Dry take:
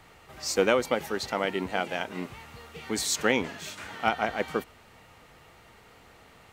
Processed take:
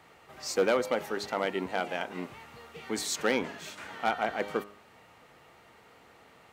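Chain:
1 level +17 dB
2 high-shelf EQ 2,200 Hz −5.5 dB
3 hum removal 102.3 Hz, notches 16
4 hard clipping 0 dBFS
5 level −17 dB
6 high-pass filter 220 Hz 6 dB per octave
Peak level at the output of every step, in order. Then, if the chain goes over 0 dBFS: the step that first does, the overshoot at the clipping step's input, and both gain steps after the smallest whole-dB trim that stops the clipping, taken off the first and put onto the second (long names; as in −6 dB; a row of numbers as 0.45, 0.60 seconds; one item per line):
+9.5, +7.5, +7.5, 0.0, −17.0, −14.0 dBFS
step 1, 7.5 dB
step 1 +9 dB, step 5 −9 dB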